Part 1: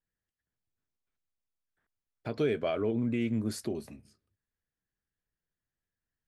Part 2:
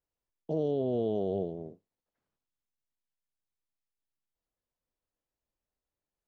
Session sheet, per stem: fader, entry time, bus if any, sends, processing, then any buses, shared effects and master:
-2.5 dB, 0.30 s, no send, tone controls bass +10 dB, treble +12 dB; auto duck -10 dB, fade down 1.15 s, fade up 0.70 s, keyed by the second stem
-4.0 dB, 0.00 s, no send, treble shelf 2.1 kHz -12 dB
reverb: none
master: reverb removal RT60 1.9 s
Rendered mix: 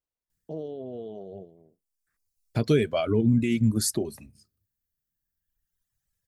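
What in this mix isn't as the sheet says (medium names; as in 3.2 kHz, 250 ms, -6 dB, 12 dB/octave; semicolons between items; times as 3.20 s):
stem 1 -2.5 dB -> +5.0 dB; stem 2: missing treble shelf 2.1 kHz -12 dB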